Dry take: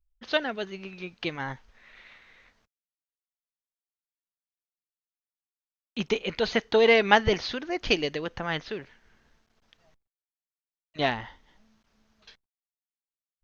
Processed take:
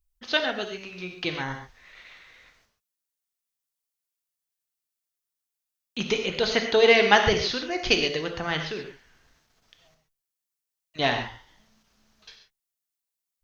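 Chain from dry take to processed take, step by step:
high-shelf EQ 4,300 Hz +10 dB
reverb whose tail is shaped and stops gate 160 ms flat, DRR 4 dB

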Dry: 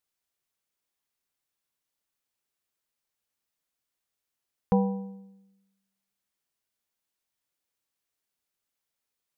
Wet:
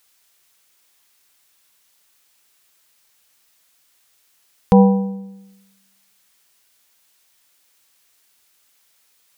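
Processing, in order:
boost into a limiter +16 dB
one half of a high-frequency compander encoder only
level −1 dB

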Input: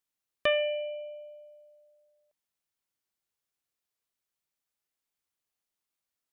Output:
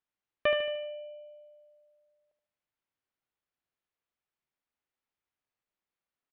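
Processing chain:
low-pass filter 2,700 Hz 12 dB per octave
on a send: repeating echo 75 ms, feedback 47%, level −8 dB

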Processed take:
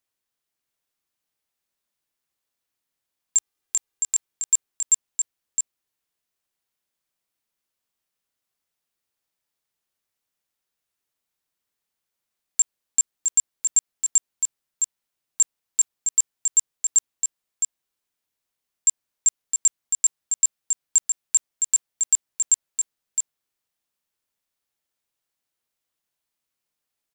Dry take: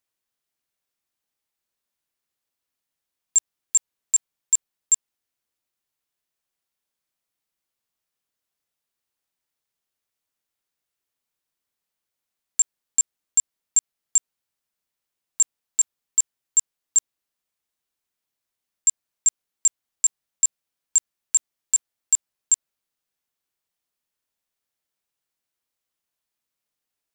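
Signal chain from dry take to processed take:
0:03.37–0:04.16: comb filter 2.5 ms, depth 59%
single-tap delay 663 ms −5.5 dB

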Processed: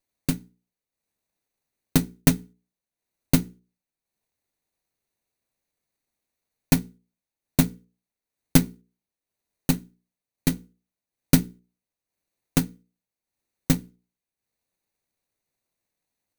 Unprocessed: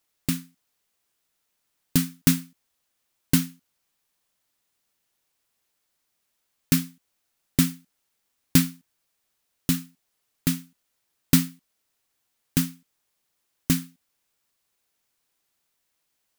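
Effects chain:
lower of the sound and its delayed copy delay 0.48 ms
transient designer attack +9 dB, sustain −7 dB
in parallel at −6.5 dB: decimation without filtering 26×
on the sum: mains-hum notches 60/120/180/240/300/360/420/480 Hz
level −8 dB

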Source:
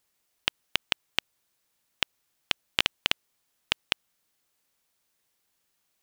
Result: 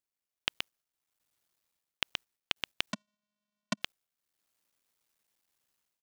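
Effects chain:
sub-harmonics by changed cycles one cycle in 3, muted
automatic gain control gain up to 13 dB
noise gate −57 dBFS, range −16 dB
single-tap delay 125 ms −10.5 dB
brickwall limiter −7 dBFS, peak gain reduction 6.5 dB
0:02.92–0:03.82: channel vocoder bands 4, square 208 Hz

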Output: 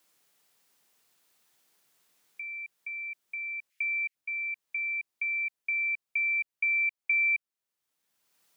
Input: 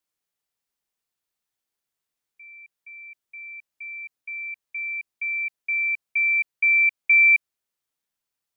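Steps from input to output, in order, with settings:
0:03.70–0:04.15: high-pass with resonance 2,200 Hz, resonance Q 3.1
multiband upward and downward compressor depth 70%
level −5.5 dB

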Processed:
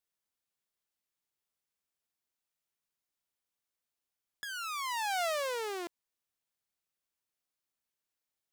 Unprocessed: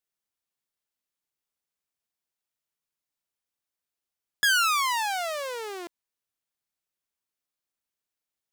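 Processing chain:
compressor whose output falls as the input rises −30 dBFS, ratio −1
level −5 dB

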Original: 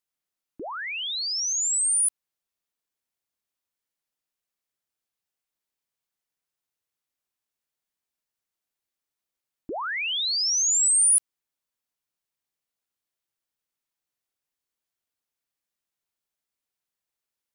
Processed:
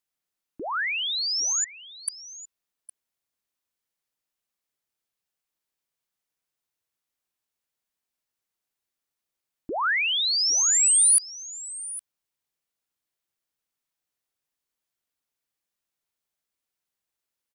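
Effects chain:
dynamic equaliser 1,500 Hz, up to +6 dB, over −47 dBFS, Q 1
0:01.64–0:02.08: voice inversion scrambler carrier 3,300 Hz
single-tap delay 811 ms −17 dB
level +1 dB

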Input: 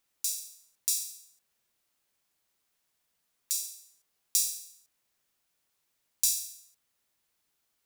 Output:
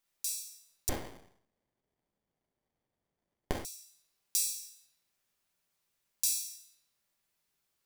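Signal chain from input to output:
rectangular room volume 530 cubic metres, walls mixed, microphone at 1.2 metres
0:00.89–0:03.65: windowed peak hold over 33 samples
level −5 dB

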